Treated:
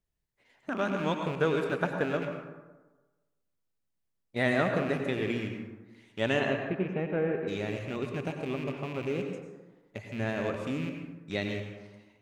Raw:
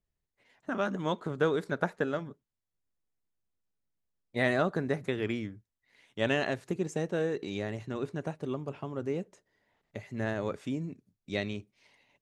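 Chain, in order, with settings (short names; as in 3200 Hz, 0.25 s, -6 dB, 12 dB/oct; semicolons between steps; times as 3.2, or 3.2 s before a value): rattling part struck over -38 dBFS, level -33 dBFS; 6.39–7.47 LPF 3600 Hz -> 1800 Hz 24 dB/oct; plate-style reverb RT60 1.2 s, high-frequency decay 0.45×, pre-delay 80 ms, DRR 4 dB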